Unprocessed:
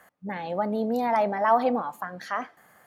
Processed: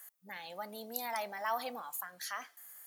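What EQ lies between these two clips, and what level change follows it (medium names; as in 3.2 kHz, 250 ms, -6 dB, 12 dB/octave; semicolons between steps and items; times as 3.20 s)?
pre-emphasis filter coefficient 0.97; bass shelf 170 Hz +4 dB; treble shelf 5.6 kHz +8 dB; +3.5 dB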